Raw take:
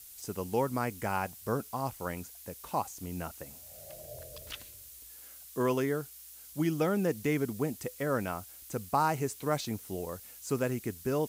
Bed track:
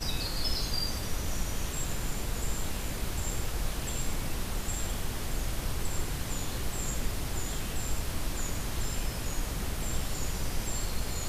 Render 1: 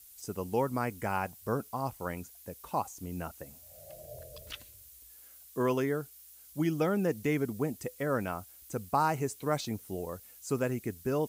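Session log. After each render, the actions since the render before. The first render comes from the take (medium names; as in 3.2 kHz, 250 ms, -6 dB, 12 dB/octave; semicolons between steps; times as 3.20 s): noise reduction 6 dB, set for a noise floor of -51 dBFS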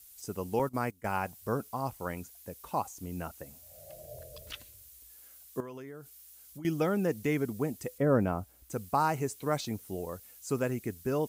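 0.59–1.17 s: gate -35 dBFS, range -17 dB; 5.60–6.65 s: compression, threshold -42 dBFS; 7.98–8.70 s: tilt shelf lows +8 dB, about 1.2 kHz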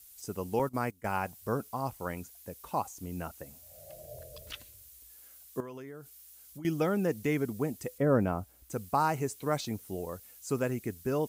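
no audible change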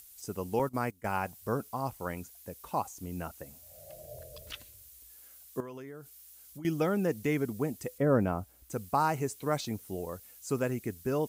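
upward compressor, threshold -52 dBFS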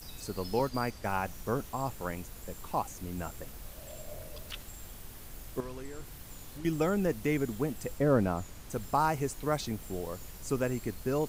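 add bed track -14.5 dB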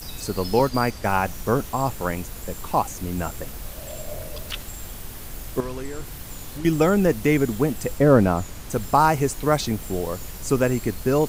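trim +10.5 dB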